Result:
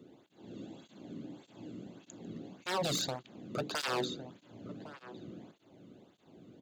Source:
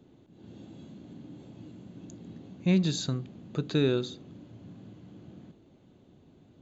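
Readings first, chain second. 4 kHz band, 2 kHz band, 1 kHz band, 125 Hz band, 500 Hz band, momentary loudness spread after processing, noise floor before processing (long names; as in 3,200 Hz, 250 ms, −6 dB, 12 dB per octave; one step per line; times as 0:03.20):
0.0 dB, +1.0 dB, +10.0 dB, −13.5 dB, −5.5 dB, 23 LU, −59 dBFS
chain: wave folding −28.5 dBFS
slap from a distant wall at 190 metres, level −13 dB
through-zero flanger with one copy inverted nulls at 1.7 Hz, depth 1.3 ms
level +4.5 dB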